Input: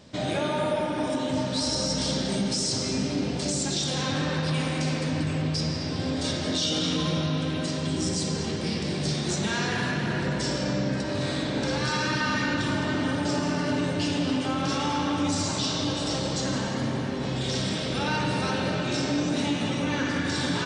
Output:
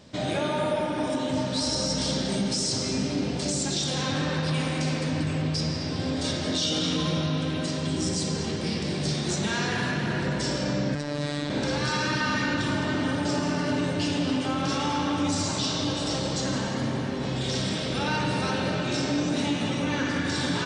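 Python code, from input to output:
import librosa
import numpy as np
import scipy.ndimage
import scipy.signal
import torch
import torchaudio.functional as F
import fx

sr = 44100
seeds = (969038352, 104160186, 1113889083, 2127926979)

y = fx.robotise(x, sr, hz=146.0, at=(10.95, 11.5))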